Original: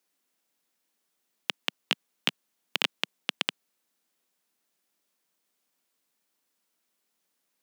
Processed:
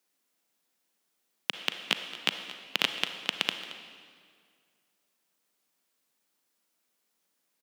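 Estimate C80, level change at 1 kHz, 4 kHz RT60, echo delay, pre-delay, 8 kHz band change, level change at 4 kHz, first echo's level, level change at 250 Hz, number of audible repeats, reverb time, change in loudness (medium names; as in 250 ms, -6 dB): 9.0 dB, +0.5 dB, 1.7 s, 224 ms, 35 ms, +0.5 dB, +0.5 dB, -16.5 dB, +0.5 dB, 1, 2.0 s, +0.5 dB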